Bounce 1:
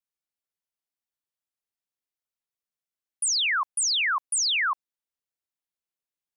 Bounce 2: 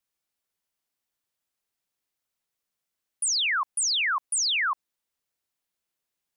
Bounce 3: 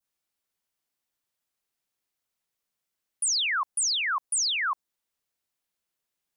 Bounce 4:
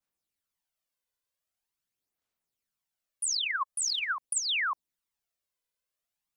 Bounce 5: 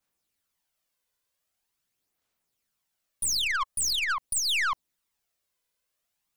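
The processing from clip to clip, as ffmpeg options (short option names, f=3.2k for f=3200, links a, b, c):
-af "alimiter=level_in=5.5dB:limit=-24dB:level=0:latency=1,volume=-5.5dB,volume=7.5dB"
-af "adynamicequalizer=threshold=0.00891:dfrequency=2500:dqfactor=1:tfrequency=2500:tqfactor=1:attack=5:release=100:ratio=0.375:range=2.5:mode=cutabove:tftype=bell"
-af "aphaser=in_gain=1:out_gain=1:delay=2:decay=0.5:speed=0.44:type=sinusoidal,volume=-5.5dB"
-af "aeval=exprs='(tanh(39.8*val(0)+0.35)-tanh(0.35))/39.8':c=same,volume=8dB"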